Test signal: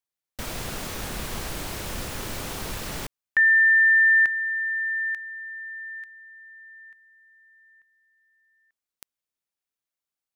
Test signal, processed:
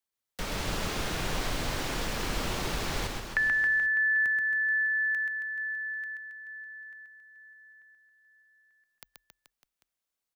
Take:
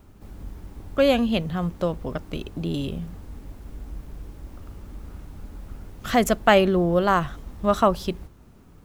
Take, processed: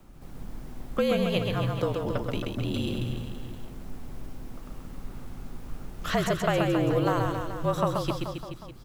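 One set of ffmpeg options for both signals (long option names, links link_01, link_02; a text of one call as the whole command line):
ffmpeg -i in.wav -filter_complex "[0:a]acrossover=split=410|6700[link_01][link_02][link_03];[link_01]acompressor=threshold=-29dB:ratio=4[link_04];[link_02]acompressor=threshold=-27dB:ratio=4[link_05];[link_03]acompressor=threshold=-50dB:ratio=4[link_06];[link_04][link_05][link_06]amix=inputs=3:normalize=0,aecho=1:1:130|273|430.3|603.3|793.7:0.631|0.398|0.251|0.158|0.1,afreqshift=-46" out.wav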